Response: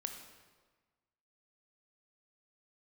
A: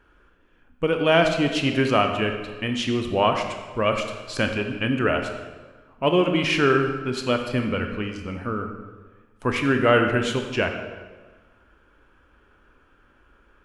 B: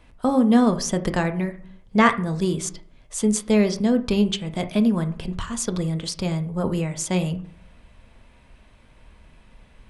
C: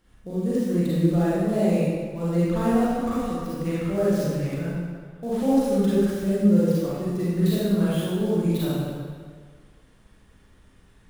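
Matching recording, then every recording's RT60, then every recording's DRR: A; 1.4, 0.55, 1.8 seconds; 4.5, 7.5, −9.5 decibels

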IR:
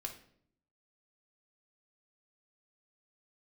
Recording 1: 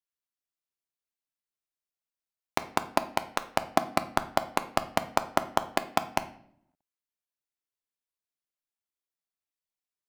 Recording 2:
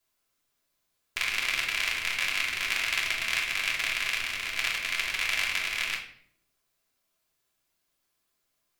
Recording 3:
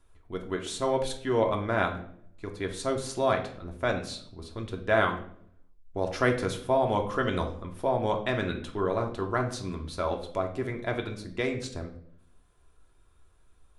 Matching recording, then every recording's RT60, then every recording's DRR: 3; non-exponential decay, 0.60 s, 0.60 s; 8.0, −5.5, 2.0 decibels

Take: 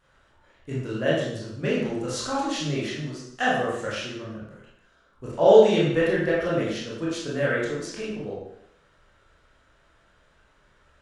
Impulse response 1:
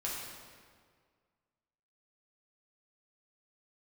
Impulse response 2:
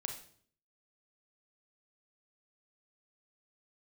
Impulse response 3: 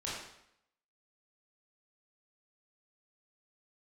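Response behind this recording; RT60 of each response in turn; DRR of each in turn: 3; 1.9, 0.55, 0.75 seconds; −5.5, 3.5, −7.5 decibels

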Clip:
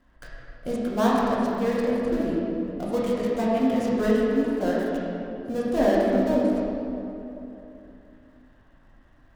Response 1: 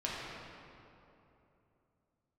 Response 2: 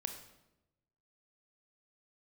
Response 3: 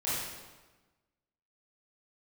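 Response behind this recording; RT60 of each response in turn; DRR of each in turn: 1; 3.0, 0.95, 1.2 seconds; −6.5, 5.5, −11.0 decibels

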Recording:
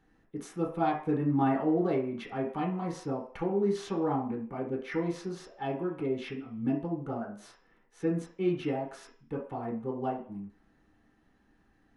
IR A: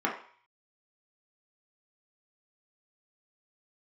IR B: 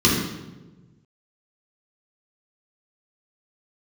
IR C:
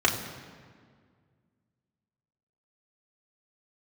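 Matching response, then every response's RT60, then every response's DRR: A; 0.50, 1.2, 1.9 seconds; −3.0, −6.5, −2.0 decibels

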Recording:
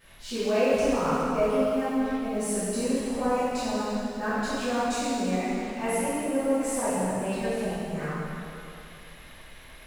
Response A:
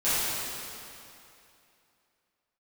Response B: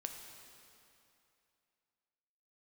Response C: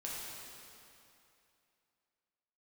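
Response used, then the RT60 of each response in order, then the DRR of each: A; 2.7, 2.7, 2.7 seconds; −15.5, 3.5, −6.0 decibels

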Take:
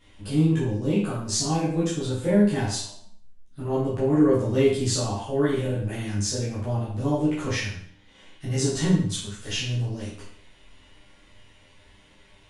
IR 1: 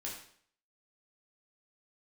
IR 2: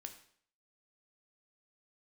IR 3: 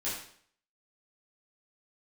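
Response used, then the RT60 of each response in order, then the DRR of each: 3; 0.55, 0.55, 0.55 seconds; −4.0, 5.5, −10.0 decibels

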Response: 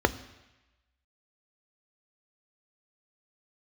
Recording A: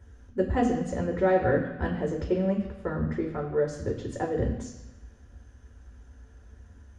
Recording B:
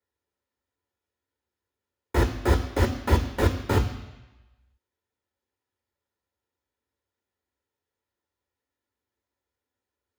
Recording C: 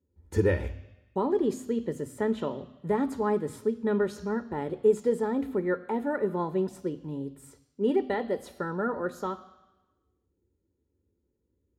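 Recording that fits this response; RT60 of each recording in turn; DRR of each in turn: C; 1.0, 1.0, 1.0 seconds; −0.5, 5.0, 11.5 decibels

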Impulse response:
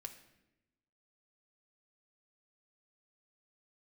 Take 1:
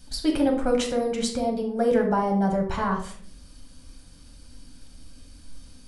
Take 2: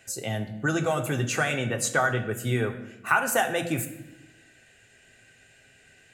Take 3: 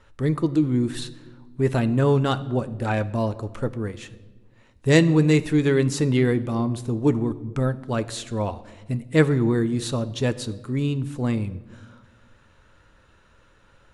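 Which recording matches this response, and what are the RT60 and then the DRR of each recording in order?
2; 0.55, 0.90, 1.3 seconds; 0.5, 4.0, 11.5 decibels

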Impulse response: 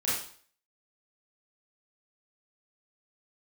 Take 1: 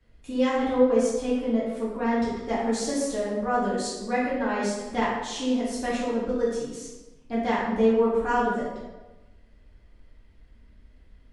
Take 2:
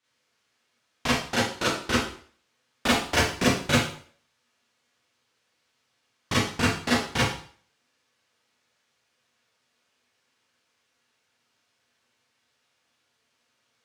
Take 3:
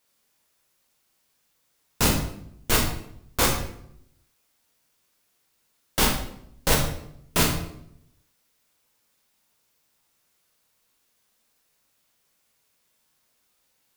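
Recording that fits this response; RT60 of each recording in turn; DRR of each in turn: 2; 1.1, 0.50, 0.75 seconds; −9.5, −9.5, −1.5 decibels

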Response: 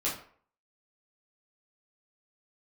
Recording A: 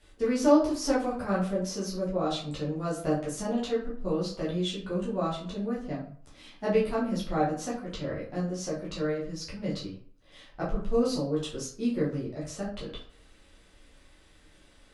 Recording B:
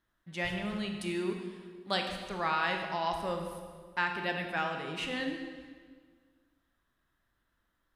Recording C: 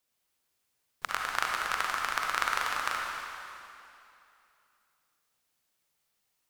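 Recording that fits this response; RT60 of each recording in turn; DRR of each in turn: A; 0.50, 1.7, 2.7 seconds; −7.5, 3.5, −1.0 decibels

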